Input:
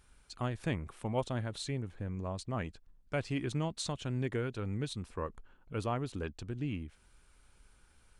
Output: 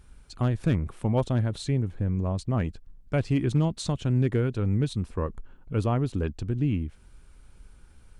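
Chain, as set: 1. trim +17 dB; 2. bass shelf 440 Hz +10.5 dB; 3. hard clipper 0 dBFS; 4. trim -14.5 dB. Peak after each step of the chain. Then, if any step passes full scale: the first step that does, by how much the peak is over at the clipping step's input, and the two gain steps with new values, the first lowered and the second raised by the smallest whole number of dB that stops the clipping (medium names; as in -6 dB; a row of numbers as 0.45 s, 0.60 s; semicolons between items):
-2.5 dBFS, +3.5 dBFS, 0.0 dBFS, -14.5 dBFS; step 2, 3.5 dB; step 1 +13 dB, step 4 -10.5 dB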